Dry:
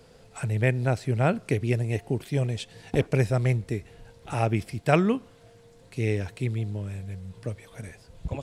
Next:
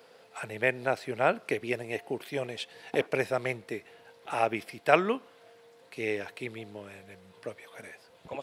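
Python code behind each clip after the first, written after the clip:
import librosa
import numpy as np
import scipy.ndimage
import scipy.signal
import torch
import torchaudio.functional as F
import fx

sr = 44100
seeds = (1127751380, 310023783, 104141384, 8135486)

y = scipy.signal.sosfilt(scipy.signal.bessel(2, 570.0, 'highpass', norm='mag', fs=sr, output='sos'), x)
y = fx.peak_eq(y, sr, hz=7400.0, db=-10.0, octaves=1.2)
y = F.gain(torch.from_numpy(y), 3.0).numpy()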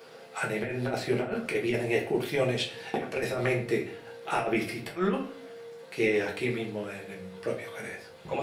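y = fx.over_compress(x, sr, threshold_db=-31.0, ratio=-0.5)
y = fx.room_shoebox(y, sr, seeds[0], volume_m3=34.0, walls='mixed', distance_m=0.69)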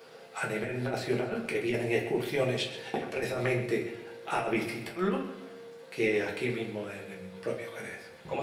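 y = fx.echo_feedback(x, sr, ms=128, feedback_pct=49, wet_db=-13.0)
y = F.gain(torch.from_numpy(y), -2.0).numpy()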